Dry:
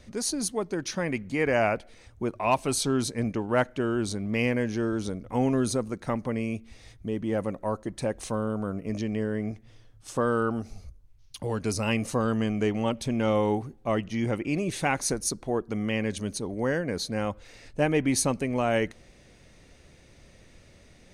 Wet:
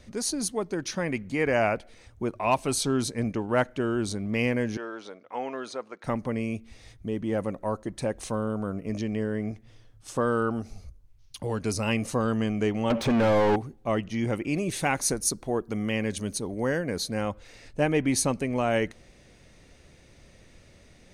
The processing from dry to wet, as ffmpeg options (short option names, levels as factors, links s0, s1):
-filter_complex "[0:a]asettb=1/sr,asplit=3[s0][s1][s2];[s0]atrim=end=4.774[s3];[s1]atrim=start=4.77:end=6.04,asetpts=PTS-STARTPTS,afade=t=in:d=0.004:c=qsin,afade=t=out:st=1.266:d=0.004:c=qsin,highpass=620,lowpass=3500[s4];[s2]atrim=start=6.036[s5];[s3][s4]acrossfade=d=0.004:c1=hsin:c2=qsin[s6];[s6][s5]acrossfade=d=0.004:c1=qsin:c2=hsin,asettb=1/sr,asplit=3[s7][s8][s9];[s7]atrim=end=12.904[s10];[s8]atrim=start=12.9:end=13.56,asetpts=PTS-STARTPTS,afade=t=in:d=0.004:c=qsin,afade=t=out:st=0.656:d=0.004:c=qsin,asplit=2[s11][s12];[s12]highpass=f=720:p=1,volume=35.5,asoftclip=type=tanh:threshold=0.178[s13];[s11][s13]amix=inputs=2:normalize=0,lowpass=f=1200:p=1,volume=0.501[s14];[s9]atrim=start=13.556[s15];[s10][s14]acrossfade=d=0.004:c1=hsin:c2=qsin[s16];[s16][s15]acrossfade=d=0.004:c1=qsin:c2=hsin,asettb=1/sr,asplit=3[s17][s18][s19];[s17]atrim=end=14.304[s20];[s18]atrim=start=14.3:end=17.21,asetpts=PTS-STARTPTS,afade=t=in:d=0.004:c=qsin,afade=t=out:st=2.906:d=0.004:c=qsin,highshelf=f=11000:g=10[s21];[s19]atrim=start=17.206[s22];[s20][s21]acrossfade=d=0.004:c1=hsin:c2=qsin[s23];[s23][s22]acrossfade=d=0.004:c1=qsin:c2=hsin"